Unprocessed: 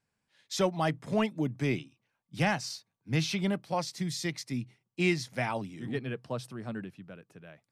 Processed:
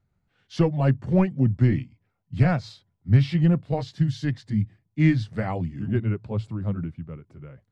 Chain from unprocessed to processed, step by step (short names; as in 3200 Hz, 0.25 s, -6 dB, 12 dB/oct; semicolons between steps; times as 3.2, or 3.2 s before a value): delay-line pitch shifter -2.5 st; RIAA curve playback; gain +2.5 dB